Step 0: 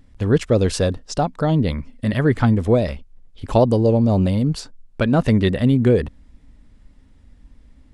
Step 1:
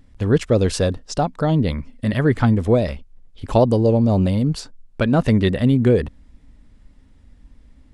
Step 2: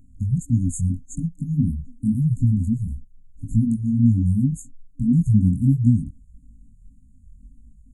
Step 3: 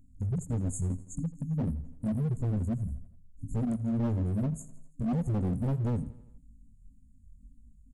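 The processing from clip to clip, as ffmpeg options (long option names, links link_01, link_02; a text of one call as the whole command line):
ffmpeg -i in.wav -af anull out.wav
ffmpeg -i in.wav -af "flanger=delay=17:depth=6.4:speed=1.7,afftfilt=real='re*(1-between(b*sr/4096,290,6400))':imag='im*(1-between(b*sr/4096,290,6400))':win_size=4096:overlap=0.75,afftfilt=real='re*(1-between(b*sr/1024,260*pow(2300/260,0.5+0.5*sin(2*PI*2*pts/sr))/1.41,260*pow(2300/260,0.5+0.5*sin(2*PI*2*pts/sr))*1.41))':imag='im*(1-between(b*sr/1024,260*pow(2300/260,0.5+0.5*sin(2*PI*2*pts/sr))/1.41,260*pow(2300/260,0.5+0.5*sin(2*PI*2*pts/sr))*1.41))':win_size=1024:overlap=0.75,volume=3dB" out.wav
ffmpeg -i in.wav -af "asoftclip=type=hard:threshold=-19.5dB,aecho=1:1:83|166|249|332|415:0.119|0.0677|0.0386|0.022|0.0125,volume=-7dB" out.wav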